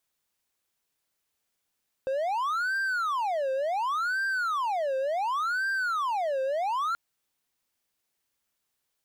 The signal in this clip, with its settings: siren wail 527–1580 Hz 0.69 per s triangle -23.5 dBFS 4.88 s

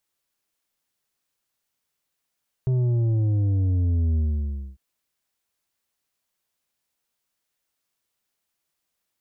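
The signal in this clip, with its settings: sub drop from 130 Hz, over 2.10 s, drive 7 dB, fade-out 0.60 s, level -19.5 dB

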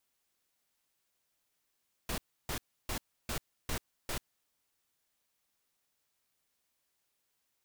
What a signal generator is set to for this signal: noise bursts pink, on 0.09 s, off 0.31 s, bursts 6, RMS -35.5 dBFS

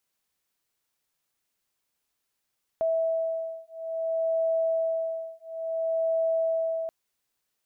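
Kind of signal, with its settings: beating tones 653 Hz, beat 0.58 Hz, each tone -28 dBFS 4.08 s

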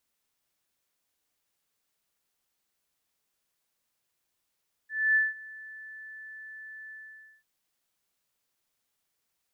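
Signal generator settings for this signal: ADSR sine 1.75 kHz, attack 262 ms, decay 182 ms, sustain -22.5 dB, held 2.02 s, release 522 ms -19 dBFS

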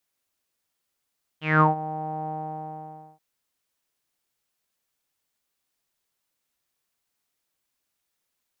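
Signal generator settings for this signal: synth note saw D#3 12 dB/octave, low-pass 800 Hz, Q 11, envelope 2 oct, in 0.28 s, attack 198 ms, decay 0.14 s, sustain -17.5 dB, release 0.91 s, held 0.87 s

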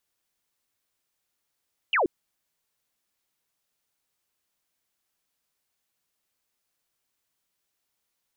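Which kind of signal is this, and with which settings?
laser zap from 3.1 kHz, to 300 Hz, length 0.13 s sine, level -19.5 dB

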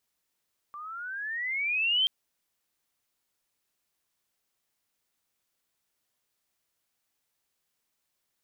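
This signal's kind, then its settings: gliding synth tone sine, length 1.33 s, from 1.16 kHz, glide +17.5 st, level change +17.5 dB, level -21 dB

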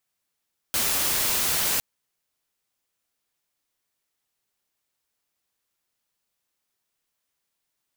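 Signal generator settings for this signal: noise white, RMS -24 dBFS 1.06 s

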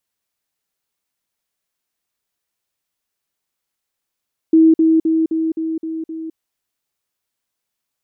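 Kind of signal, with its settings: level ladder 322 Hz -6.5 dBFS, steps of -3 dB, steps 7, 0.21 s 0.05 s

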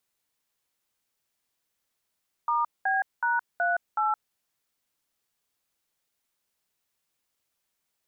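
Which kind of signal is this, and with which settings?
DTMF "*B#38", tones 168 ms, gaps 205 ms, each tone -25 dBFS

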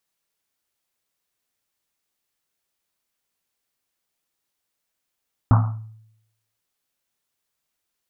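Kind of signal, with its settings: Risset drum, pitch 110 Hz, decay 0.80 s, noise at 1 kHz, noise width 640 Hz, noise 20%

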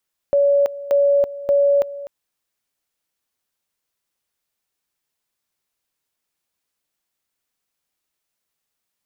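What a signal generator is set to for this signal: two-level tone 566 Hz -12 dBFS, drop 16.5 dB, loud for 0.33 s, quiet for 0.25 s, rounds 3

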